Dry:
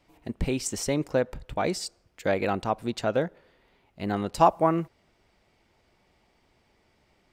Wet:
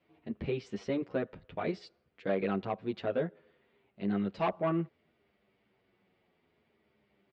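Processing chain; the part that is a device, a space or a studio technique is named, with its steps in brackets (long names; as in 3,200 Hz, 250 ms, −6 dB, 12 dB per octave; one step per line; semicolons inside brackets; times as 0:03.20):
barber-pole flanger into a guitar amplifier (barber-pole flanger 9.2 ms −0.62 Hz; soft clipping −19 dBFS, distortion −13 dB; loudspeaker in its box 100–3,600 Hz, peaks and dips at 200 Hz +5 dB, 410 Hz +5 dB, 870 Hz −5 dB)
level −3.5 dB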